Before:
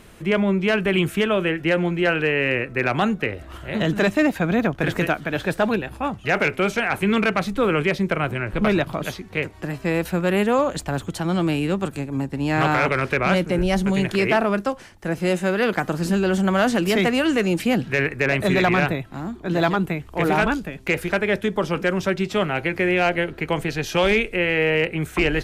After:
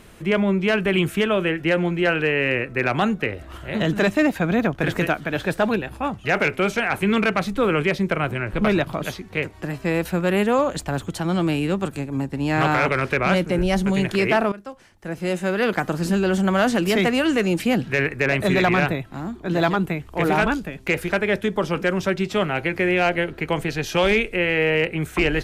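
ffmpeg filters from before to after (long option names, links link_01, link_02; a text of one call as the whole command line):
ffmpeg -i in.wav -filter_complex "[0:a]asplit=2[link_01][link_02];[link_01]atrim=end=14.52,asetpts=PTS-STARTPTS,afade=type=out:start_time=14.516:duration=0.004:curve=hsin:silence=0.125893[link_03];[link_02]atrim=start=14.52,asetpts=PTS-STARTPTS,afade=type=in:duration=1.17:silence=0.125893[link_04];[link_03][link_04]concat=n=2:v=0:a=1" out.wav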